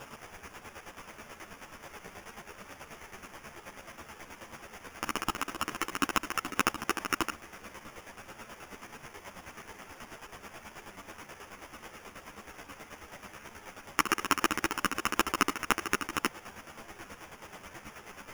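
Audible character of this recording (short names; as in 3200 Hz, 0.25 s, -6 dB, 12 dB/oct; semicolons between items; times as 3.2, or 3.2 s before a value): a quantiser's noise floor 8-bit, dither triangular; chopped level 9.3 Hz, depth 60%, duty 35%; aliases and images of a low sample rate 4100 Hz, jitter 0%; a shimmering, thickened sound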